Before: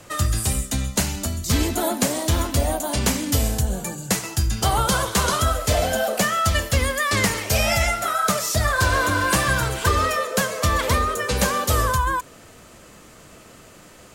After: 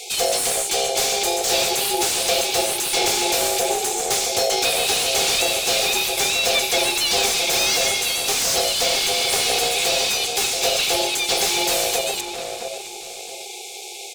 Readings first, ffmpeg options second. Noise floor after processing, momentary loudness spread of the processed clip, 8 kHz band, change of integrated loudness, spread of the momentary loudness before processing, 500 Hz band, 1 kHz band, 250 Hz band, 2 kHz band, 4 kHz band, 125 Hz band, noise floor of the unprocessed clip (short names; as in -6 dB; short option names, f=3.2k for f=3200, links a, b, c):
-35 dBFS, 11 LU, +6.0 dB, +3.0 dB, 4 LU, +2.5 dB, -2.0 dB, -7.0 dB, 0.0 dB, +9.5 dB, -19.5 dB, -47 dBFS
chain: -filter_complex "[0:a]afftfilt=real='re*(1-between(b*sr/4096,250,2700))':imag='im*(1-between(b*sr/4096,250,2700))':win_size=4096:overlap=0.75,asplit=2[a][b];[b]adelay=240,highpass=300,lowpass=3.4k,asoftclip=type=hard:threshold=-14.5dB,volume=-11dB[c];[a][c]amix=inputs=2:normalize=0,asplit=2[d][e];[e]highpass=f=720:p=1,volume=31dB,asoftclip=type=tanh:threshold=-6dB[f];[d][f]amix=inputs=2:normalize=0,lowpass=f=3.9k:p=1,volume=-6dB,asplit=2[g][h];[h]adelay=668,lowpass=f=1.5k:p=1,volume=-6dB,asplit=2[i][j];[j]adelay=668,lowpass=f=1.5k:p=1,volume=0.29,asplit=2[k][l];[l]adelay=668,lowpass=f=1.5k:p=1,volume=0.29,asplit=2[m][n];[n]adelay=668,lowpass=f=1.5k:p=1,volume=0.29[o];[i][k][m][o]amix=inputs=4:normalize=0[p];[g][p]amix=inputs=2:normalize=0,aeval=exprs='val(0)*sin(2*PI*600*n/s)':c=same"